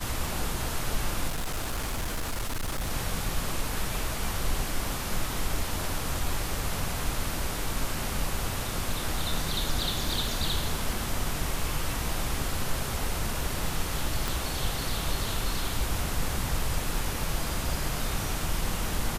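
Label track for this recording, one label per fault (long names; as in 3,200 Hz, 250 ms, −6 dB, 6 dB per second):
1.280000	2.910000	clipping −26.5 dBFS
14.280000	14.280000	click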